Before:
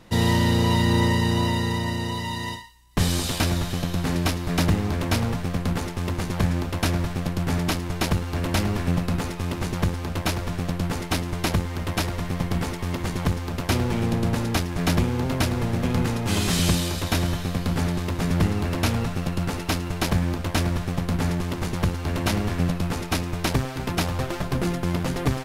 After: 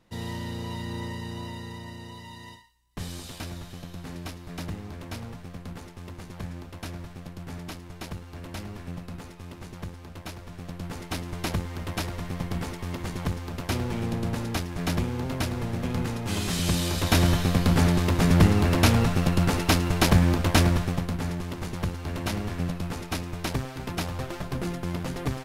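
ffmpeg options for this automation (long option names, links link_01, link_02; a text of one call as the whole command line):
ffmpeg -i in.wav -af "volume=3.5dB,afade=type=in:start_time=10.47:duration=1:silence=0.375837,afade=type=in:start_time=16.64:duration=0.63:silence=0.354813,afade=type=out:start_time=20.61:duration=0.54:silence=0.334965" out.wav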